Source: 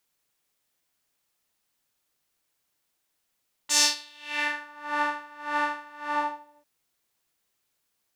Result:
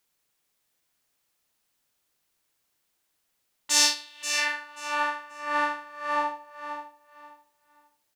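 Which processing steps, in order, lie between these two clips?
4.06–5.31 s: bass shelf 310 Hz -10 dB; feedback delay 533 ms, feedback 23%, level -9.5 dB; trim +1 dB

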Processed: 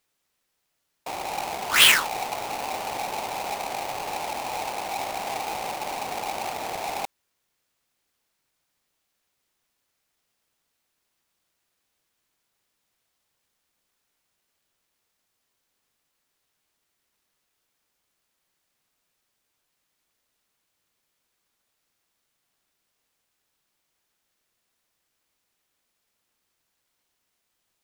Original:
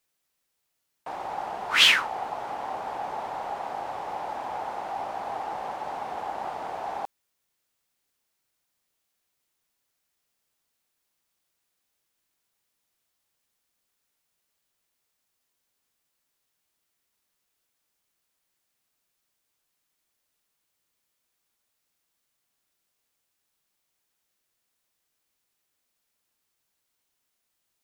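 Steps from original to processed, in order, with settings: square wave that keeps the level; trim -1 dB

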